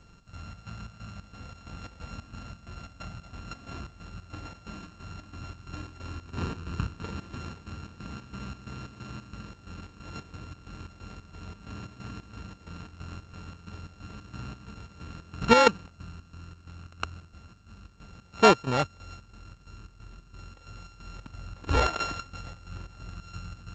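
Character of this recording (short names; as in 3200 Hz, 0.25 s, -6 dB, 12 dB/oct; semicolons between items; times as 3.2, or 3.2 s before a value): a buzz of ramps at a fixed pitch in blocks of 32 samples; chopped level 3 Hz, depth 65%, duty 60%; G.722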